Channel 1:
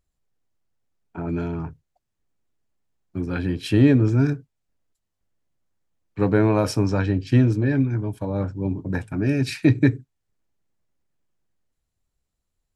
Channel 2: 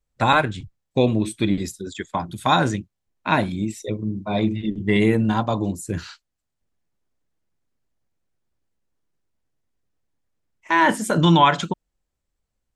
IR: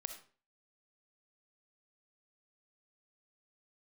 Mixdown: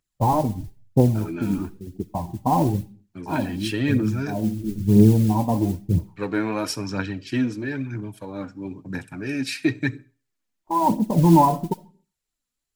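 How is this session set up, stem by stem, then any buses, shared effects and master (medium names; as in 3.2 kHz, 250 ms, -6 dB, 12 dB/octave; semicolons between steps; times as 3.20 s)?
-0.5 dB, 0.00 s, send -9 dB, high-pass 230 Hz 12 dB/octave
+3.0 dB, 0.00 s, send -4 dB, steep low-pass 970 Hz 72 dB/octave; gate with hold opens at -48 dBFS; modulation noise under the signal 29 dB; auto duck -10 dB, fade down 0.25 s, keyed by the first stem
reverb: on, RT60 0.40 s, pre-delay 20 ms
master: phaser 1 Hz, delay 4.3 ms, feedback 46%; peaking EQ 540 Hz -10 dB 2.1 oct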